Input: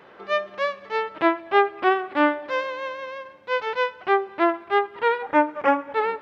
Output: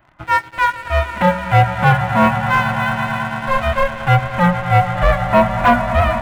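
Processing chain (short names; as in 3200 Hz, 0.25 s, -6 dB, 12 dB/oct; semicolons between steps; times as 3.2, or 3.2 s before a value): band inversion scrambler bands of 500 Hz; reverb removal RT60 0.87 s; swelling echo 0.112 s, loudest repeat 5, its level -17.5 dB; on a send at -12 dB: reverb RT60 0.45 s, pre-delay 3 ms; on the sum: sample leveller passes 3; bell 5000 Hz -8 dB 1.2 oct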